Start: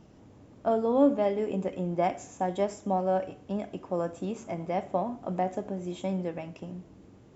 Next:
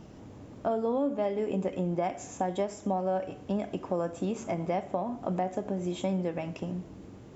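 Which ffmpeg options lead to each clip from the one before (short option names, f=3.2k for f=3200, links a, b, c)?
-af "alimiter=limit=-19dB:level=0:latency=1:release=413,acompressor=threshold=-36dB:ratio=2,volume=6dB"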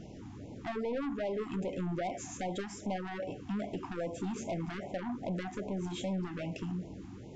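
-af "aresample=16000,asoftclip=type=tanh:threshold=-32.5dB,aresample=44100,afftfilt=real='re*(1-between(b*sr/1024,470*pow(1500/470,0.5+0.5*sin(2*PI*2.5*pts/sr))/1.41,470*pow(1500/470,0.5+0.5*sin(2*PI*2.5*pts/sr))*1.41))':imag='im*(1-between(b*sr/1024,470*pow(1500/470,0.5+0.5*sin(2*PI*2.5*pts/sr))/1.41,470*pow(1500/470,0.5+0.5*sin(2*PI*2.5*pts/sr))*1.41))':win_size=1024:overlap=0.75,volume=1.5dB"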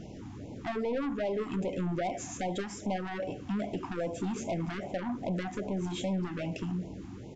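-filter_complex "[0:a]asplit=2[a][b];[b]adelay=72,lowpass=f=1.7k:p=1,volume=-23dB,asplit=2[c][d];[d]adelay=72,lowpass=f=1.7k:p=1,volume=0.54,asplit=2[e][f];[f]adelay=72,lowpass=f=1.7k:p=1,volume=0.54,asplit=2[g][h];[h]adelay=72,lowpass=f=1.7k:p=1,volume=0.54[i];[a][c][e][g][i]amix=inputs=5:normalize=0,volume=3dB"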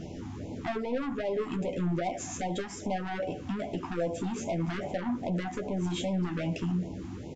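-filter_complex "[0:a]alimiter=level_in=5dB:limit=-24dB:level=0:latency=1:release=379,volume=-5dB,asplit=2[a][b];[b]adelay=12,volume=-7dB[c];[a][c]amix=inputs=2:normalize=0,volume=3.5dB"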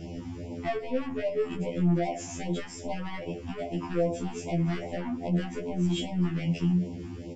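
-af "afftfilt=real='re*2*eq(mod(b,4),0)':imag='im*2*eq(mod(b,4),0)':win_size=2048:overlap=0.75,volume=2.5dB"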